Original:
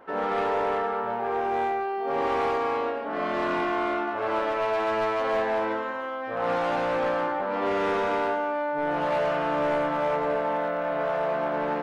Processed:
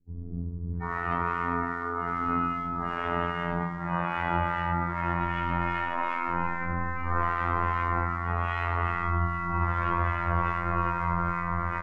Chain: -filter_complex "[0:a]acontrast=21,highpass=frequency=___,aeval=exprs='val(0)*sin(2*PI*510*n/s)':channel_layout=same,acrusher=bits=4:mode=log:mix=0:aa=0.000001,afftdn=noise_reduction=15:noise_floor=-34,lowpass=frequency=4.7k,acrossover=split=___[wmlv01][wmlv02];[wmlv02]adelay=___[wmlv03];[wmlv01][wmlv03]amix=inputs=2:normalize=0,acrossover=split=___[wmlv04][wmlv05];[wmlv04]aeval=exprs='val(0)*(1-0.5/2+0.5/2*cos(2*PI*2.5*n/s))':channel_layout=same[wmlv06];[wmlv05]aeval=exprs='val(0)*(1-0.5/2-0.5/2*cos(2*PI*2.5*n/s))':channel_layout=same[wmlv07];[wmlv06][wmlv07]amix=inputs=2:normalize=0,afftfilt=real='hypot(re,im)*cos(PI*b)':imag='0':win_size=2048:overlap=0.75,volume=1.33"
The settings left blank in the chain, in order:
44, 290, 740, 1400